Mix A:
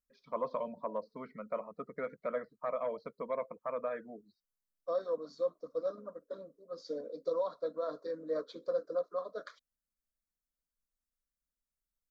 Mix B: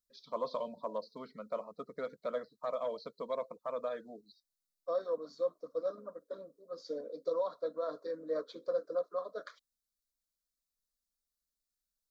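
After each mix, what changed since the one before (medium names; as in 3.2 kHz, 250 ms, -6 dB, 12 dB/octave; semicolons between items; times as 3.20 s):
first voice: add resonant high shelf 2.9 kHz +9.5 dB, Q 3; master: add tone controls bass -4 dB, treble 0 dB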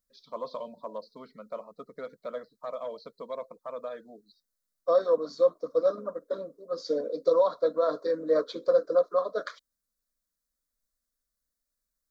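second voice +11.0 dB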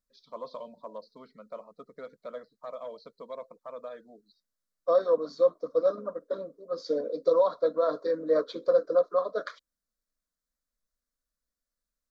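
first voice -3.5 dB; second voice: add distance through air 61 m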